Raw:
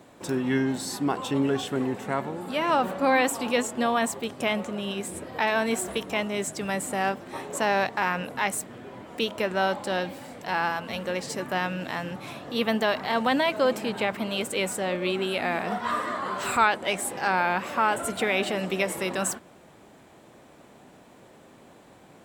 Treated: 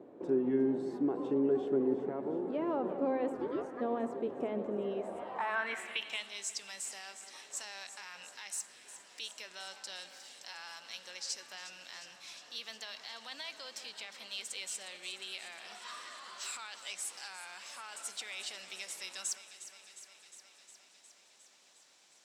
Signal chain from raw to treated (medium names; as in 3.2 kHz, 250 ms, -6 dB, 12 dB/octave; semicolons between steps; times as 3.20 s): in parallel at -2 dB: compression, threshold -41 dBFS, peak gain reduction 23 dB; on the sum: peak limiter -17 dBFS, peak gain reduction 8.5 dB; 3.32–3.80 s: ring modulator 470 Hz -> 1.5 kHz; echo whose repeats swap between lows and highs 179 ms, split 1.8 kHz, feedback 85%, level -12 dB; band-pass sweep 380 Hz -> 5.5 kHz, 4.79–6.44 s; on a send at -19 dB: reverberation RT60 3.9 s, pre-delay 30 ms